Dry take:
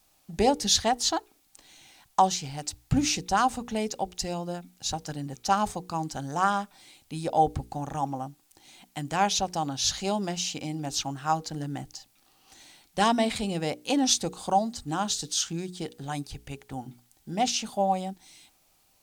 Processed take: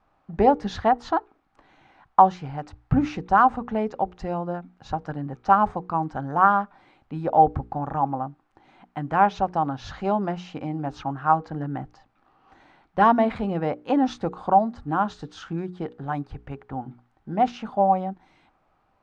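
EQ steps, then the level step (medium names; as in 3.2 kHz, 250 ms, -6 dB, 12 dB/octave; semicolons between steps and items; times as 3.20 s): resonant low-pass 1.3 kHz, resonance Q 1.7; +3.5 dB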